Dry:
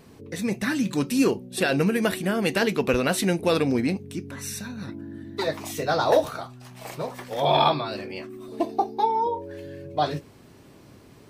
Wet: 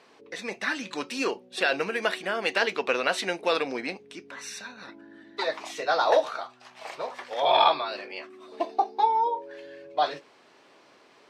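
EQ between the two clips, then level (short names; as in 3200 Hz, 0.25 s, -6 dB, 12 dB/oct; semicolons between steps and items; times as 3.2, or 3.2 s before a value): BPF 610–4800 Hz; +1.5 dB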